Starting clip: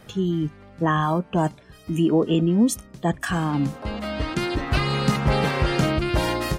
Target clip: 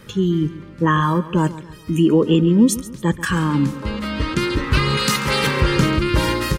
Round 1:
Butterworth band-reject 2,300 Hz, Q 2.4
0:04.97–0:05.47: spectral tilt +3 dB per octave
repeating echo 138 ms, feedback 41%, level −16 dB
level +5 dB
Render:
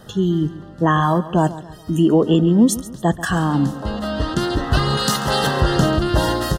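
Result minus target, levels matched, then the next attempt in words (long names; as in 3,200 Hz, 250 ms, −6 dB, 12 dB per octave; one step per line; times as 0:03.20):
2,000 Hz band −3.0 dB
Butterworth band-reject 710 Hz, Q 2.4
0:04.97–0:05.47: spectral tilt +3 dB per octave
repeating echo 138 ms, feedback 41%, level −16 dB
level +5 dB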